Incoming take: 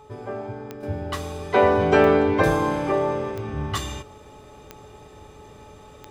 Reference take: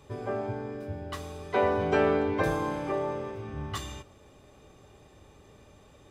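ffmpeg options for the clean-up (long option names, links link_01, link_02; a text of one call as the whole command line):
ffmpeg -i in.wav -af "adeclick=threshold=4,bandreject=frequency=427.7:width_type=h:width=4,bandreject=frequency=855.4:width_type=h:width=4,bandreject=frequency=1283.1:width_type=h:width=4,bandreject=frequency=860:width=30,asetnsamples=nb_out_samples=441:pad=0,asendcmd='0.83 volume volume -8dB',volume=0dB" out.wav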